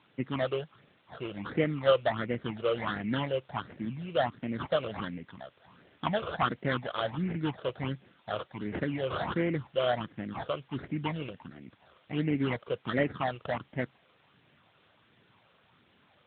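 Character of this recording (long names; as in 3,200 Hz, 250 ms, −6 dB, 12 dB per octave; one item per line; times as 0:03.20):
aliases and images of a low sample rate 2,500 Hz, jitter 20%
phaser sweep stages 8, 1.4 Hz, lowest notch 240–1,100 Hz
a quantiser's noise floor 10 bits, dither triangular
AMR narrowband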